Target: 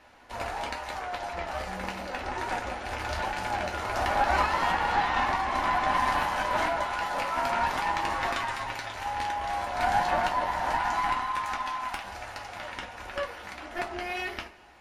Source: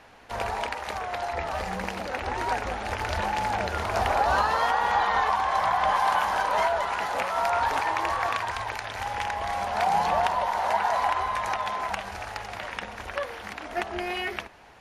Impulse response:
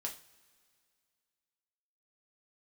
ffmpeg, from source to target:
-filter_complex "[0:a]asettb=1/sr,asplit=3[link_01][link_02][link_03];[link_01]atrim=end=8.154[link_04];[link_02]atrim=start=8.15:end=8.9,asetpts=PTS-STARTPTS,afade=type=in:duration=0.004:curve=qsin,afade=type=out:start_time=0.746:duration=0.004:curve=qsin,aecho=1:1:7.4:0.57,atrim=end_sample=33075[link_05];[link_03]atrim=start=8.896[link_06];[link_04][link_05]acrossfade=duration=0.004:curve1=hsin:curve2=qsin[link_07];[link_07][link_06]acrossfade=duration=0.004:curve1=qsin:curve2=hsin,asettb=1/sr,asplit=3[link_08][link_09][link_10];[link_08]atrim=end=10.724[link_11];[link_09]atrim=start=10.72:end=12.04,asetpts=PTS-STARTPTS,afade=type=in:duration=0.004:curve=qsin,afade=type=out:start_time=1.316:duration=0.004:curve=qsin,highpass=frequency=770:width=0.5412,highpass=frequency=770:width=1.3066[link_12];[link_10]atrim=start=12.036[link_13];[link_11][link_12]acrossfade=duration=0.004:curve1=hsin:curve2=qsin[link_14];[link_14][link_13]acrossfade=duration=0.004:curve1=qsin:curve2=hsin,aeval=exprs='0.335*(cos(1*acos(clip(val(0)/0.335,-1,1)))-cos(1*PI/2))+0.0841*(cos(4*acos(clip(val(0)/0.335,-1,1)))-cos(4*PI/2))':channel_layout=same[link_15];[1:a]atrim=start_sample=2205,asetrate=66150,aresample=44100[link_16];[link_15][link_16]afir=irnorm=-1:irlink=0,volume=1dB"

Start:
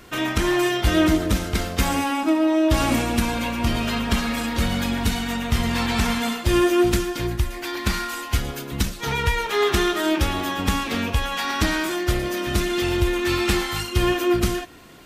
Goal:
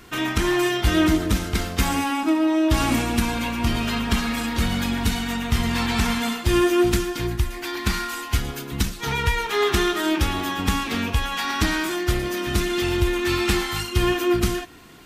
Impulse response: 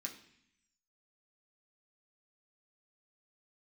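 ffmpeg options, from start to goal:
-af "equalizer=frequency=570:width_type=o:width=0.35:gain=-7.5"

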